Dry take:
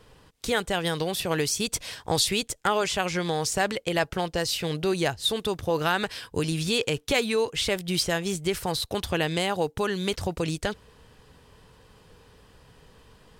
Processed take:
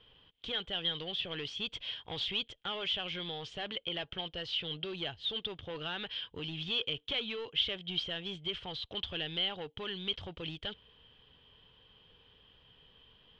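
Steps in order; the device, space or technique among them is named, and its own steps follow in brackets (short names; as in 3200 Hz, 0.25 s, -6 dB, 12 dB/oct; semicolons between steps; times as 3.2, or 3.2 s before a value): overdriven synthesiser ladder filter (soft clip -23 dBFS, distortion -11 dB; ladder low-pass 3300 Hz, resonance 85%)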